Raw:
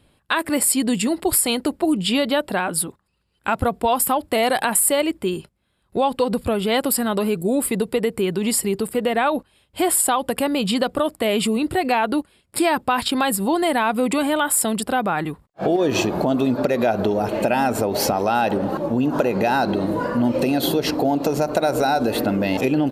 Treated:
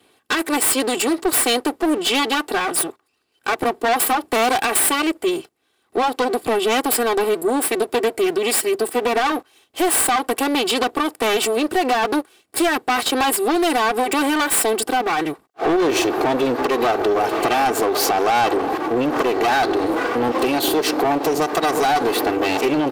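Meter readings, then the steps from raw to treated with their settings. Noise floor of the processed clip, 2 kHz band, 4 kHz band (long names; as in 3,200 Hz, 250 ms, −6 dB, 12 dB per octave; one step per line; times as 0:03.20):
−65 dBFS, +3.5 dB, +3.5 dB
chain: lower of the sound and its delayed copy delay 2.6 ms
high-pass filter 260 Hz 12 dB per octave
soft clipping −19 dBFS, distortion −13 dB
level +6.5 dB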